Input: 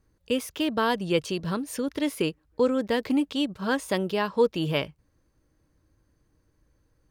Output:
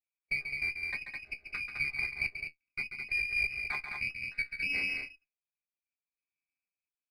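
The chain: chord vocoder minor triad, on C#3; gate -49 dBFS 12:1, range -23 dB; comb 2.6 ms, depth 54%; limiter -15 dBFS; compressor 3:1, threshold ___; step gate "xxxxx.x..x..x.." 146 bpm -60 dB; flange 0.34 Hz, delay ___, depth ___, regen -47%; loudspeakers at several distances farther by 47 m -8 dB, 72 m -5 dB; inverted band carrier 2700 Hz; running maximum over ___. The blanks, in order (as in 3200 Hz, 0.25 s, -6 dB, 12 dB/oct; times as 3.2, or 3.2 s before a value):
-26 dBFS, 10 ms, 6.2 ms, 3 samples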